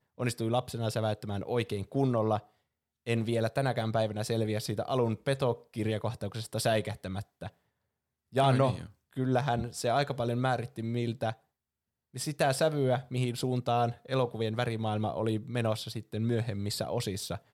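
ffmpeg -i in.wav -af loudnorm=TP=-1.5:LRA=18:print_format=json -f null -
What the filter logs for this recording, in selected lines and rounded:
"input_i" : "-31.6",
"input_tp" : "-14.0",
"input_lra" : "2.5",
"input_thresh" : "-41.8",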